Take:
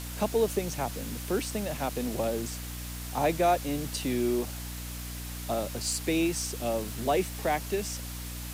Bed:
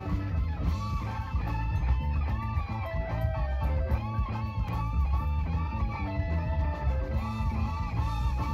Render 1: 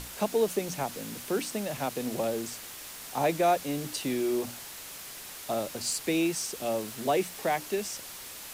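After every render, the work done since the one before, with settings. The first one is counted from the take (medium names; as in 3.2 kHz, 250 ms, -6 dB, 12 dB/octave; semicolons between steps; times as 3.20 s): hum notches 60/120/180/240/300 Hz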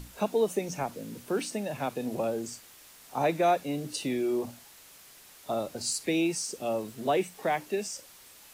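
noise print and reduce 10 dB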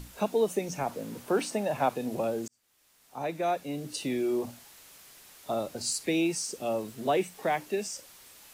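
0.86–1.97 s: peaking EQ 830 Hz +7.5 dB 1.7 oct; 2.48–4.19 s: fade in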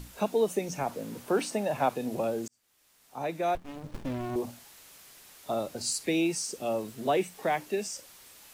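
3.55–4.36 s: sliding maximum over 65 samples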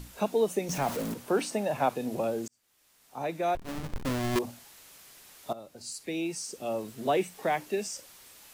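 0.69–1.14 s: jump at every zero crossing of -32.5 dBFS; 3.57–4.39 s: square wave that keeps the level; 5.53–7.10 s: fade in, from -15.5 dB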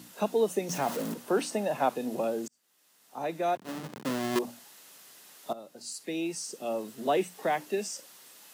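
high-pass 160 Hz 24 dB/octave; band-stop 2.3 kHz, Q 14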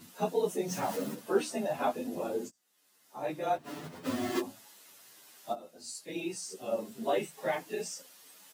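phase randomisation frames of 50 ms; endless flanger 9.5 ms +0.53 Hz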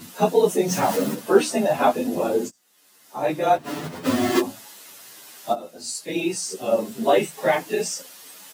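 trim +12 dB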